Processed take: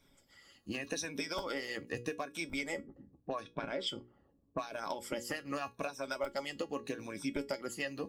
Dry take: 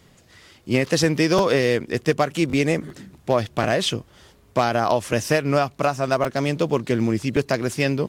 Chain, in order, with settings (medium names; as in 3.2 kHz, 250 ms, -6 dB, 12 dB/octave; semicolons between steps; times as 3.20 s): drifting ripple filter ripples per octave 1.6, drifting -0.83 Hz, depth 14 dB; harmonic-percussive split harmonic -18 dB; 2.80–4.64 s: level-controlled noise filter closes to 420 Hz, open at -15.5 dBFS; hum notches 60/120/180/240/300/360/420/480 Hz; compression, threshold -24 dBFS, peak gain reduction 11.5 dB; feedback comb 280 Hz, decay 0.17 s, harmonics all, mix 70%; trim -2.5 dB